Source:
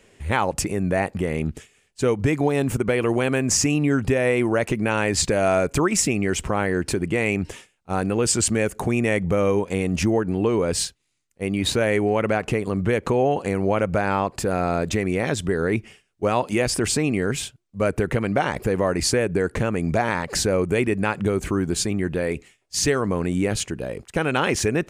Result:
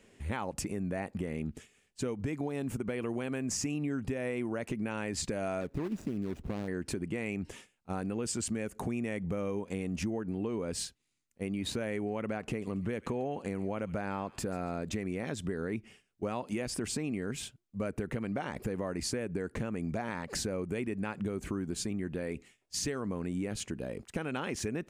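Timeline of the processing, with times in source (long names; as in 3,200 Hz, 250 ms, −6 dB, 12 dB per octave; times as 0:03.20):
0:05.61–0:06.68: running median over 41 samples
0:12.41–0:14.74: delay with a high-pass on its return 139 ms, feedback 36%, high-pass 1,900 Hz, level −15 dB
whole clip: parametric band 230 Hz +6 dB 0.78 octaves; downward compressor 3 to 1, threshold −26 dBFS; level −7.5 dB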